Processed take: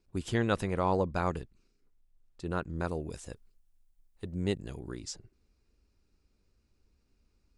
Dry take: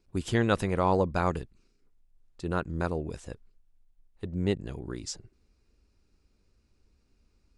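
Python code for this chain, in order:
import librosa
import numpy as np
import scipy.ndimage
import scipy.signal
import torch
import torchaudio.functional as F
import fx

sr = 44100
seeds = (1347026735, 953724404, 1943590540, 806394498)

y = fx.high_shelf(x, sr, hz=5400.0, db=10.5, at=(2.87, 4.95))
y = y * librosa.db_to_amplitude(-3.5)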